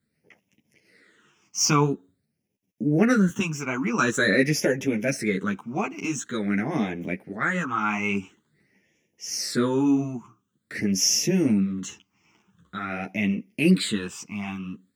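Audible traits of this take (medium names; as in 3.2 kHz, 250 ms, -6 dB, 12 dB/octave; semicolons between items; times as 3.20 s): phasing stages 8, 0.47 Hz, lowest notch 510–1300 Hz; tremolo triangle 0.75 Hz, depth 40%; a shimmering, thickened sound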